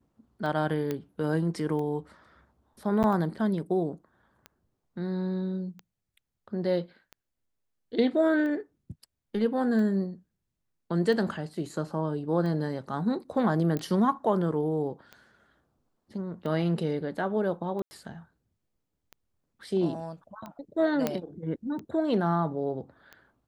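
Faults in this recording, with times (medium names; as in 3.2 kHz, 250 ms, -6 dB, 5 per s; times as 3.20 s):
tick 45 rpm
0.91 s: pop -18 dBFS
3.03–3.04 s: dropout 9.1 ms
13.77 s: pop -18 dBFS
17.82–17.91 s: dropout 90 ms
21.07 s: pop -12 dBFS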